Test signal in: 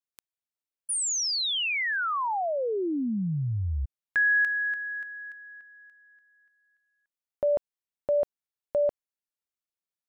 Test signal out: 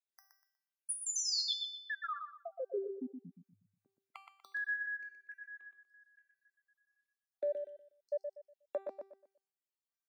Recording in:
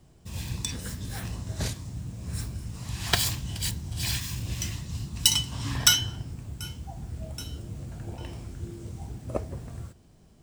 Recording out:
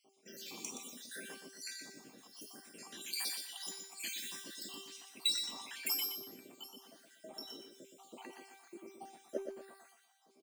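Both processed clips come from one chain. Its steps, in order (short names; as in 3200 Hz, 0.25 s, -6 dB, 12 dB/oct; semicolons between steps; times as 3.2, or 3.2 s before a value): random spectral dropouts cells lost 73%; steep high-pass 240 Hz 36 dB/oct; notch 7900 Hz, Q 22; in parallel at 0 dB: compressor, threshold -44 dBFS; on the sum: soft clip -10 dBFS; resonator 390 Hz, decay 0.6 s, mix 90%; on a send: feedback echo 0.121 s, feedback 29%, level -6.5 dB; on the sum: gain +9 dB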